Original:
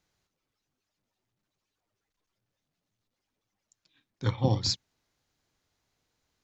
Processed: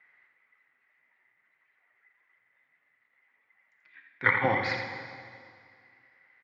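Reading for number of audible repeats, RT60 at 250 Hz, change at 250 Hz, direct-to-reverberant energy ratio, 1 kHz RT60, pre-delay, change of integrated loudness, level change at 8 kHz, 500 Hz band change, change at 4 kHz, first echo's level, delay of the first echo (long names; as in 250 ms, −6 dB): 1, 2.2 s, −3.5 dB, 3.0 dB, 2.2 s, 5 ms, +1.5 dB, can't be measured, +3.5 dB, −9.0 dB, −8.5 dB, 84 ms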